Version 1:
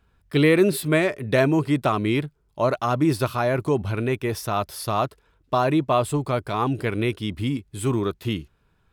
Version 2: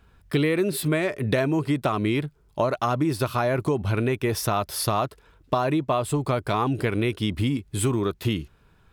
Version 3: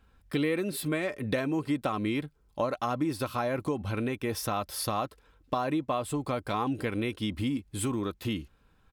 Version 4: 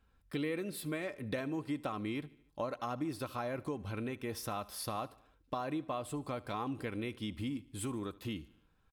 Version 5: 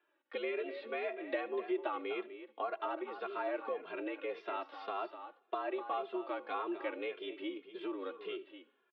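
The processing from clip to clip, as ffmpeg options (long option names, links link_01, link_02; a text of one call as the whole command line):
ffmpeg -i in.wav -af "acompressor=threshold=-27dB:ratio=6,volume=6.5dB" out.wav
ffmpeg -i in.wav -af "aecho=1:1:3.8:0.38,volume=-6.5dB" out.wav
ffmpeg -i in.wav -af "aecho=1:1:74|148|222|296:0.0891|0.0499|0.0279|0.0157,volume=-8dB" out.wav
ffmpeg -i in.wav -filter_complex "[0:a]aecho=1:1:249:0.266,highpass=frequency=260:width_type=q:width=0.5412,highpass=frequency=260:width_type=q:width=1.307,lowpass=frequency=3300:width_type=q:width=0.5176,lowpass=frequency=3300:width_type=q:width=0.7071,lowpass=frequency=3300:width_type=q:width=1.932,afreqshift=74,asplit=2[link_01][link_02];[link_02]adelay=2.5,afreqshift=-1.8[link_03];[link_01][link_03]amix=inputs=2:normalize=1,volume=4dB" out.wav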